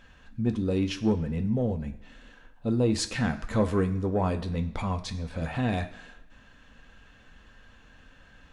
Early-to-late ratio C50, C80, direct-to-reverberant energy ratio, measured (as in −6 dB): 13.5 dB, 16.0 dB, 5.5 dB